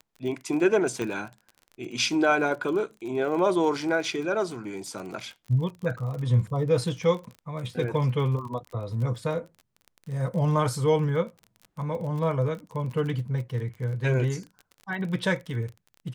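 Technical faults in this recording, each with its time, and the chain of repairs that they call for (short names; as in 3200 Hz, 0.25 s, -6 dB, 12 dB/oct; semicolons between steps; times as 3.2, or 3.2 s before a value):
crackle 32/s -35 dBFS
1.02 pop -18 dBFS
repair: de-click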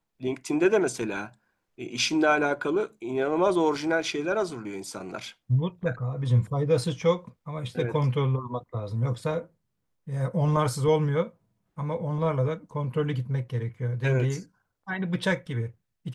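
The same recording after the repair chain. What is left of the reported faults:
none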